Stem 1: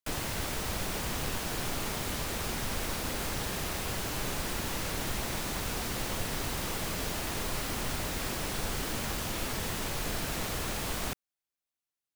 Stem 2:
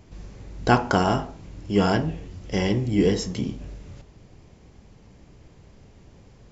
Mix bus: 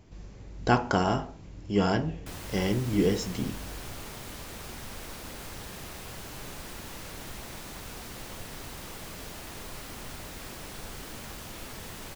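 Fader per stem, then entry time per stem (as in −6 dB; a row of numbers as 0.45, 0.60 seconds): −7.5, −4.5 decibels; 2.20, 0.00 seconds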